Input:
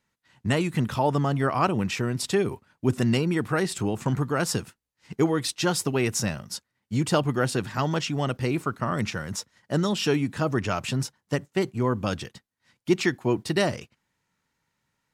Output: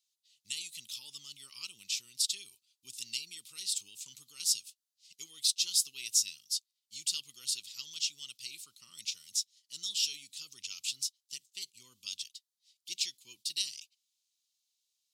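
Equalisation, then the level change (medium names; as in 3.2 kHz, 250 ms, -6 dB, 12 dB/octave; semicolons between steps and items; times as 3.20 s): inverse Chebyshev high-pass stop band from 1.8 kHz, stop band 40 dB; tilt EQ +2 dB/octave; treble shelf 6.2 kHz -10 dB; +2.0 dB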